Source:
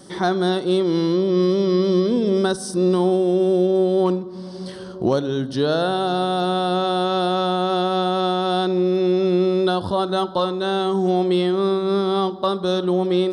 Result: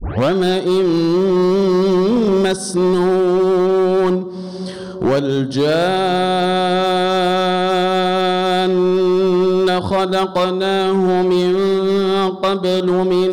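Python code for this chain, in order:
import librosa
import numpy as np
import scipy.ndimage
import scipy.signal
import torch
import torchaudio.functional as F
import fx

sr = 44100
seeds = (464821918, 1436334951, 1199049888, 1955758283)

y = fx.tape_start_head(x, sr, length_s=0.32)
y = np.clip(y, -10.0 ** (-16.5 / 20.0), 10.0 ** (-16.5 / 20.0))
y = y * librosa.db_to_amplitude(6.0)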